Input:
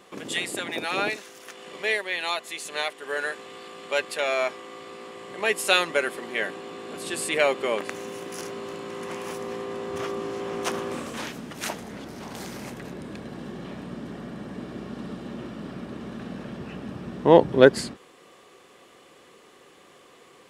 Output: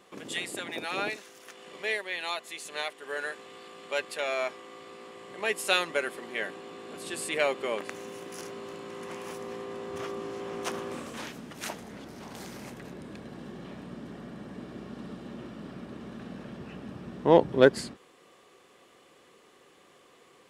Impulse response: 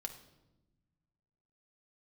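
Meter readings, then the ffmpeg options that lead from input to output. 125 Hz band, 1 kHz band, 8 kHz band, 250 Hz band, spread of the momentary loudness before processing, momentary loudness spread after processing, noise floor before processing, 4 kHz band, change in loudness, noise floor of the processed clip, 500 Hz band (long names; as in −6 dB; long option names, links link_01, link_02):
−5.0 dB, −5.0 dB, −5.5 dB, −5.0 dB, 17 LU, 18 LU, −53 dBFS, −5.0 dB, −5.0 dB, −59 dBFS, −5.0 dB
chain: -af "aeval=exprs='0.891*(cos(1*acos(clip(val(0)/0.891,-1,1)))-cos(1*PI/2))+0.0141*(cos(7*acos(clip(val(0)/0.891,-1,1)))-cos(7*PI/2))':channel_layout=same,volume=-4.5dB"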